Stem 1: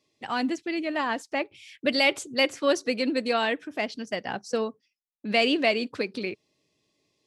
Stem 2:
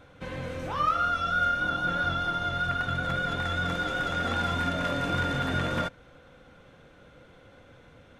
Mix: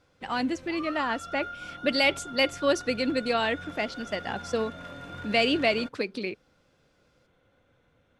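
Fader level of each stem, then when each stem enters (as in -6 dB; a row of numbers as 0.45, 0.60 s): -1.0, -13.0 dB; 0.00, 0.00 s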